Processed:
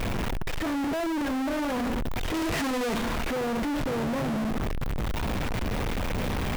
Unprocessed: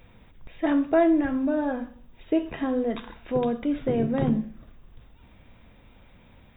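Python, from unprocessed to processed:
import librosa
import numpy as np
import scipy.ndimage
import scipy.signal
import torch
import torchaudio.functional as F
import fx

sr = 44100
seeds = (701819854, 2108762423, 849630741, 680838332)

y = np.sign(x) * np.sqrt(np.mean(np.square(x)))
y = fx.high_shelf(y, sr, hz=2600.0, db=-9.0)
y = fx.leveller(y, sr, passes=5, at=(2.34, 2.98))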